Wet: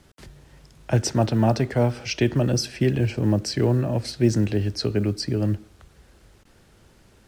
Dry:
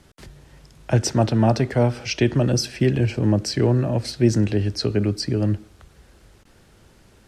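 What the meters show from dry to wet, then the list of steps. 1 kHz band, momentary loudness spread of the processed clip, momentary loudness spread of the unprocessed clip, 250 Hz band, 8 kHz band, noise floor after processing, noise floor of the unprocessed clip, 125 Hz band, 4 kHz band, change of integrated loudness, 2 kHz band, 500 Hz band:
−2.0 dB, 4 LU, 4 LU, −2.0 dB, −2.0 dB, −56 dBFS, −54 dBFS, −2.0 dB, −2.0 dB, −2.0 dB, −2.0 dB, −2.0 dB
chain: log-companded quantiser 8 bits
level −2 dB

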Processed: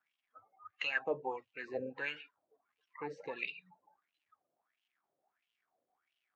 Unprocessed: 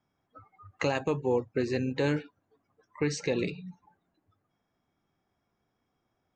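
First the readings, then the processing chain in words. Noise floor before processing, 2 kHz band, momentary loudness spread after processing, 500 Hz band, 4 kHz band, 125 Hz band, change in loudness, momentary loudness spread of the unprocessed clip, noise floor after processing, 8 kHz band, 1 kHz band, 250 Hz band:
−80 dBFS, −1.0 dB, 21 LU, −11.5 dB, −5.0 dB, −25.0 dB, −9.0 dB, 6 LU, below −85 dBFS, below −25 dB, −6.0 dB, −18.5 dB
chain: spectral magnitudes quantised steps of 15 dB
surface crackle 290 per second −64 dBFS
LFO wah 1.5 Hz 540–3,000 Hz, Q 6.3
level +7 dB

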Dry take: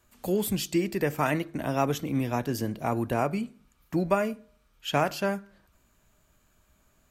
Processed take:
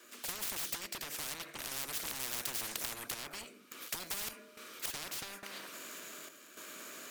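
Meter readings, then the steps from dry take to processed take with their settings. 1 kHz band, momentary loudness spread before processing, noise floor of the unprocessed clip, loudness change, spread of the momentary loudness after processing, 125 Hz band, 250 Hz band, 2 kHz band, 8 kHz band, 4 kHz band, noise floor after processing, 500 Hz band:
−16.5 dB, 6 LU, −66 dBFS, −10.5 dB, 12 LU, −26.0 dB, −25.0 dB, −8.0 dB, +2.5 dB, −1.5 dB, −57 dBFS, −22.5 dB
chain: gap after every zero crossing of 0.056 ms
Chebyshev high-pass filter 310 Hz, order 3
parametric band 830 Hz −12 dB 0.54 octaves
downward compressor 10 to 1, threshold −33 dBFS, peak gain reduction 12 dB
sine wavefolder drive 12 dB, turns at −22.5 dBFS
sample-and-hold tremolo, depth 85%
every bin compressed towards the loudest bin 10 to 1
level +2.5 dB

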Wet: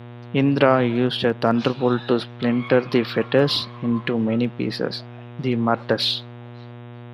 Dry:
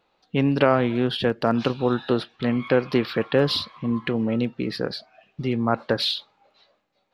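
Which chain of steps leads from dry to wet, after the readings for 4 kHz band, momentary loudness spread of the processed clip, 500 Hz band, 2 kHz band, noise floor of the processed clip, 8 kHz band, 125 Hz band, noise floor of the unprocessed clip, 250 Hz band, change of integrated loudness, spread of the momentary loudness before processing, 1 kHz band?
+2.5 dB, 16 LU, +2.5 dB, +2.5 dB, −39 dBFS, can't be measured, +2.5 dB, −69 dBFS, +2.5 dB, +2.5 dB, 8 LU, +2.5 dB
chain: hum with harmonics 120 Hz, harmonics 32, −40 dBFS −7 dB per octave
high-pass filter 88 Hz
level +2.5 dB

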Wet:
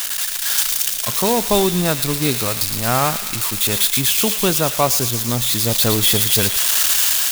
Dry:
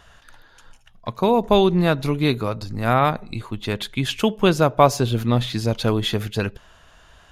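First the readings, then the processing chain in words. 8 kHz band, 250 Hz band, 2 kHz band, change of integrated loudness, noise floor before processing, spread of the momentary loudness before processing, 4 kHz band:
+21.5 dB, −1.0 dB, +4.5 dB, +5.0 dB, −52 dBFS, 12 LU, +9.5 dB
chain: spike at every zero crossing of −8.5 dBFS
automatic gain control
on a send: delay with a high-pass on its return 113 ms, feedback 75%, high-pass 2,100 Hz, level −6 dB
on the sum: noise that follows the level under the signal 17 dB
level −4 dB

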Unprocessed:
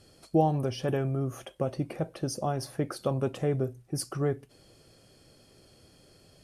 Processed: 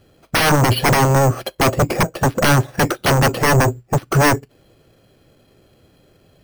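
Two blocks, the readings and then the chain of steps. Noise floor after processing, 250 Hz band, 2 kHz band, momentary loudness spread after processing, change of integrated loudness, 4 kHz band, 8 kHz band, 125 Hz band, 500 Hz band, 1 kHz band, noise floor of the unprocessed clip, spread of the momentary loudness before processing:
−56 dBFS, +11.5 dB, +27.5 dB, 5 LU, +14.5 dB, +20.0 dB, +18.0 dB, +14.5 dB, +11.5 dB, +17.0 dB, −60 dBFS, 8 LU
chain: sine wavefolder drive 19 dB, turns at −12.5 dBFS
bad sample-rate conversion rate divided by 6×, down filtered, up hold
soft clipping −13 dBFS, distortion −21 dB
expander for the loud parts 2.5 to 1, over −32 dBFS
level +6 dB

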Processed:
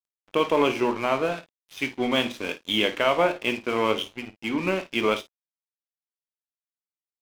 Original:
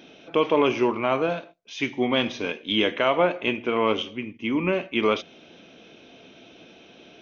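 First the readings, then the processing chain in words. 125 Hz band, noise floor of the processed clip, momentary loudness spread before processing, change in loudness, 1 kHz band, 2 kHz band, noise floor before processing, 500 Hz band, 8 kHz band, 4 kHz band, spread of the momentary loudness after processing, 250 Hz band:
−2.5 dB, below −85 dBFS, 9 LU, −1.0 dB, 0.0 dB, 0.0 dB, −51 dBFS, −1.5 dB, can't be measured, +0.5 dB, 10 LU, −2.0 dB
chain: high-shelf EQ 3,100 Hz +2.5 dB
mains-hum notches 50/100/150/200/250/300/350/400/450 Hz
dead-zone distortion −37 dBFS
ambience of single reflections 20 ms −12 dB, 53 ms −14.5 dB

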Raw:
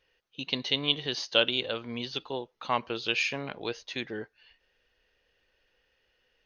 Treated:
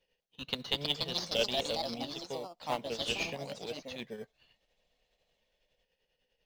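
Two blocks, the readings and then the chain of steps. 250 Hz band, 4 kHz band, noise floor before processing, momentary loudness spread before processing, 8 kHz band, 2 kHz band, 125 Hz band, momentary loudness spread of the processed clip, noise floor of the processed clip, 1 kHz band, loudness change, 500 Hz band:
−5.5 dB, −5.0 dB, −73 dBFS, 13 LU, can't be measured, −8.5 dB, −3.5 dB, 12 LU, −81 dBFS, −4.5 dB, −5.0 dB, −3.0 dB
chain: phaser with its sweep stopped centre 320 Hz, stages 6
shaped tremolo triangle 10 Hz, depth 65%
in parallel at −9 dB: decimation without filtering 16×
on the sum: delay with pitch and tempo change per echo 403 ms, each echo +3 semitones, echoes 2
level −2.5 dB

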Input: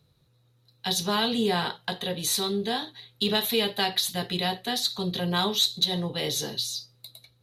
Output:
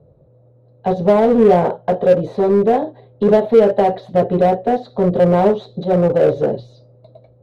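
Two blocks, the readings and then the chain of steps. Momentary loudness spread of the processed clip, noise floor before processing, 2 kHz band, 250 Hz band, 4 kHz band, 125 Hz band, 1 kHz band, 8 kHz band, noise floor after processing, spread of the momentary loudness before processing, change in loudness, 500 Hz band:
9 LU, −65 dBFS, +0.5 dB, +12.5 dB, below −15 dB, +12.5 dB, +12.5 dB, below −20 dB, −51 dBFS, 8 LU, +11.0 dB, +19.0 dB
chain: low-pass with resonance 580 Hz, resonance Q 4.9
in parallel at −3 dB: gain into a clipping stage and back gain 27.5 dB
on the sum: level +8.5 dB

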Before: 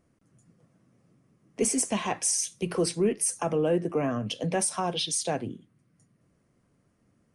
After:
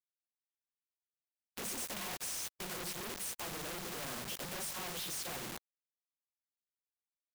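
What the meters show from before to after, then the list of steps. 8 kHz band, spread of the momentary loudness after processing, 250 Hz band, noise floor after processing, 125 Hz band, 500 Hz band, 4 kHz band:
−12.5 dB, 4 LU, −19.0 dB, below −85 dBFS, −17.0 dB, −19.5 dB, −8.0 dB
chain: random phases in long frames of 50 ms
high-shelf EQ 4,000 Hz −8 dB
mains-hum notches 50/100/150/200 Hz
comb filter 5.5 ms, depth 58%
log-companded quantiser 2 bits
every bin compressed towards the loudest bin 2 to 1
level −4 dB

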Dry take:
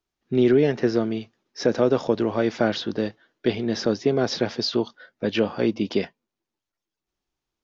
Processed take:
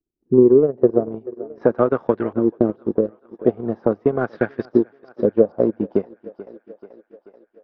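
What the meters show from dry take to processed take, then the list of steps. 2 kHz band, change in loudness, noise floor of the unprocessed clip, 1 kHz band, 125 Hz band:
−3.5 dB, +4.0 dB, below −85 dBFS, +2.0 dB, +0.5 dB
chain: auto-filter low-pass saw up 0.43 Hz 300–1,800 Hz
feedback echo with a high-pass in the loop 434 ms, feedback 66%, high-pass 270 Hz, level −14 dB
transient designer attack +6 dB, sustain −11 dB
level −2 dB

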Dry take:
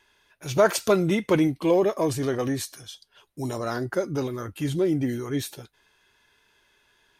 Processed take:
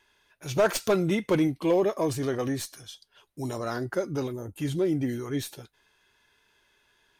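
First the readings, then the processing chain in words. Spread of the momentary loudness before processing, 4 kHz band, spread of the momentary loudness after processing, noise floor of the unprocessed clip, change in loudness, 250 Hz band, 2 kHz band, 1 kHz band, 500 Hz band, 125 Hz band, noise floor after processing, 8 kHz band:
13 LU, −2.5 dB, 13 LU, −66 dBFS, −3.0 dB, −2.5 dB, −3.0 dB, −3.5 dB, −3.0 dB, −2.5 dB, −68 dBFS, −3.0 dB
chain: stylus tracing distortion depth 0.024 ms
gain into a clipping stage and back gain 13 dB
gain on a spectral selection 0:04.33–0:04.58, 990–6,100 Hz −14 dB
level −2.5 dB

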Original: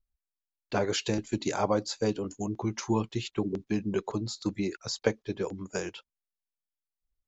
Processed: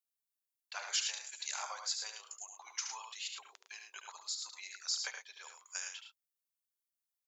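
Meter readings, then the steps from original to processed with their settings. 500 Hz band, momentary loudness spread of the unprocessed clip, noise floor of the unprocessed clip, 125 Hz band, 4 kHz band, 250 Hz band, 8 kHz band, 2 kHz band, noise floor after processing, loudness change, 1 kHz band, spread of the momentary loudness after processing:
−30.0 dB, 6 LU, below −85 dBFS, below −40 dB, −0.5 dB, below −40 dB, can't be measured, −5.0 dB, below −85 dBFS, −8.0 dB, −11.5 dB, 14 LU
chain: Bessel high-pass filter 1,400 Hz, order 6
high-shelf EQ 5,900 Hz +11.5 dB
on a send: loudspeakers that aren't time-aligned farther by 25 metres −7 dB, 37 metres −8 dB
on the sum: level −5.5 dB

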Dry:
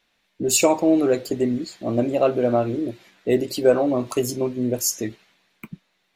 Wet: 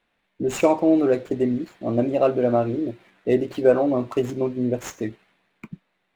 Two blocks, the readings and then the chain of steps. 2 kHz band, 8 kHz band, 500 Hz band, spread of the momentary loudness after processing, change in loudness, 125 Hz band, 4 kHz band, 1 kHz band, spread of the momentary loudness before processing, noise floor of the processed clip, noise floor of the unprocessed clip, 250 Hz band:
−2.0 dB, below −15 dB, 0.0 dB, 11 LU, −1.0 dB, 0.0 dB, below −10 dB, −0.5 dB, 10 LU, −73 dBFS, −70 dBFS, 0.0 dB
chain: running median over 9 samples
high-shelf EQ 5,700 Hz −10 dB

